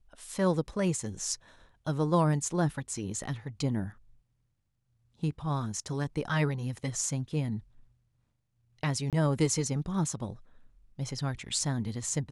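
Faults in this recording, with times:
9.1–9.13 gap 27 ms

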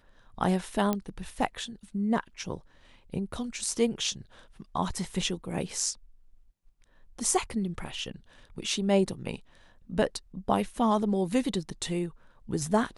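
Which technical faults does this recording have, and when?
0.93 pop -14 dBFS

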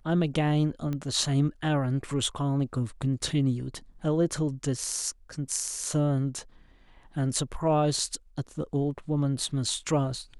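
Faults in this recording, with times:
0.93 pop -21 dBFS

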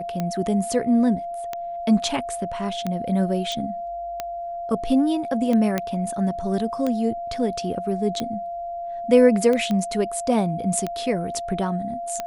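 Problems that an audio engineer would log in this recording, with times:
tick 45 rpm -13 dBFS
tone 690 Hz -28 dBFS
3.52 pop -16 dBFS
5.78 pop -9 dBFS
9.71 pop -14 dBFS

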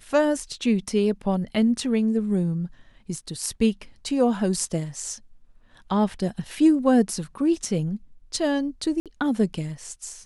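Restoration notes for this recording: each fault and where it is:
9–9.06 gap 57 ms

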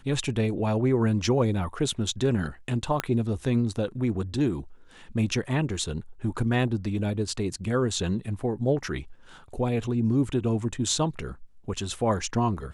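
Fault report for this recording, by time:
3 pop -10 dBFS

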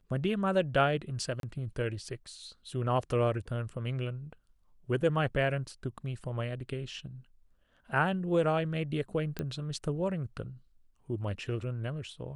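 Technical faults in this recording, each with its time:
1.4–1.43 gap 32 ms
9.39 pop -20 dBFS

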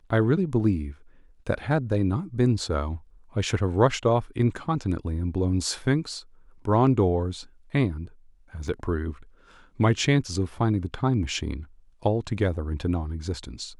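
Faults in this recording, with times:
8.68 gap 2.1 ms

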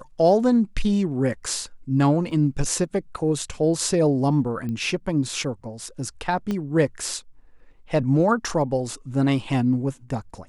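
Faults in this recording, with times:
2.31 gap 2.4 ms
4.69 pop -21 dBFS
6.51 pop -15 dBFS

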